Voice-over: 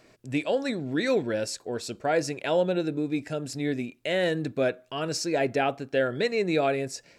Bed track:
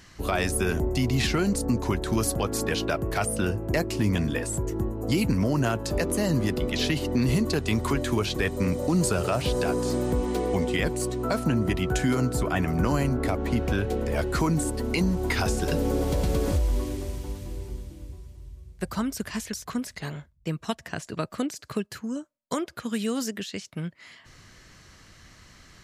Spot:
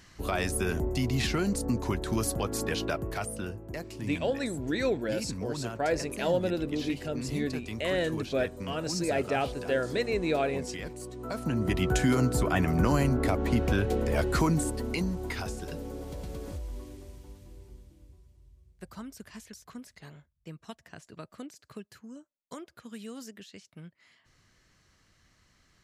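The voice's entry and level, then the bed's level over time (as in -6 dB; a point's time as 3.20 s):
3.75 s, -3.5 dB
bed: 2.90 s -4 dB
3.68 s -13 dB
11.10 s -13 dB
11.81 s -0.5 dB
14.40 s -0.5 dB
15.90 s -14 dB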